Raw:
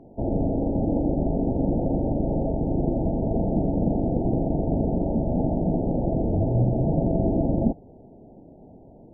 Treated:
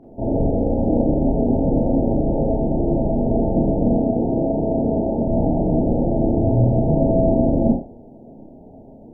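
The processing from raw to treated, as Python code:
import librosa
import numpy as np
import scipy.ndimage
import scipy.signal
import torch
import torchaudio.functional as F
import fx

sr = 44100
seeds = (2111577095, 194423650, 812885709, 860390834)

y = fx.low_shelf(x, sr, hz=110.0, db=-9.0, at=(3.94, 5.25))
y = fx.rev_schroeder(y, sr, rt60_s=0.38, comb_ms=26, drr_db=-4.0)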